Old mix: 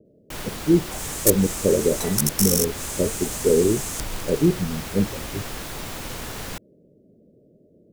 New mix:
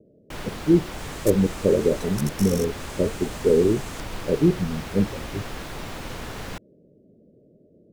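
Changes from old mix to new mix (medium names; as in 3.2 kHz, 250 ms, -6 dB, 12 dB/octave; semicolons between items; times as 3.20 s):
second sound -6.5 dB; master: add treble shelf 5.9 kHz -12 dB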